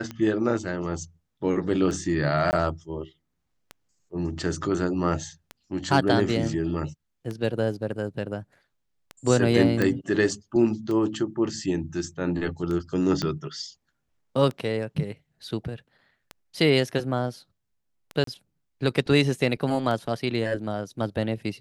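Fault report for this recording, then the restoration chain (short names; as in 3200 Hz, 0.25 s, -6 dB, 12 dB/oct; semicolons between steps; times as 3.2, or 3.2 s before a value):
tick 33 1/3 rpm -20 dBFS
2.51–2.53 gap 19 ms
9.82 pop -11 dBFS
13.22 pop -14 dBFS
18.24–18.27 gap 33 ms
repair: de-click; interpolate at 2.51, 19 ms; interpolate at 18.24, 33 ms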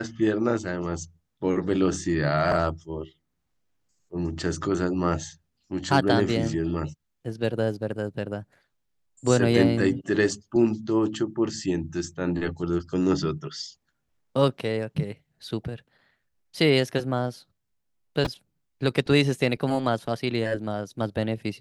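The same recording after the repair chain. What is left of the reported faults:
13.22 pop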